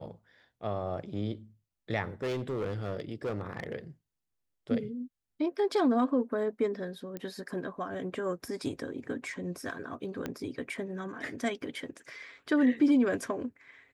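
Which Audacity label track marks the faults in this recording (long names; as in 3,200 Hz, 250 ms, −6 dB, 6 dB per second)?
2.220000	3.750000	clipping −29 dBFS
7.170000	7.170000	click −24 dBFS
10.260000	10.260000	click −20 dBFS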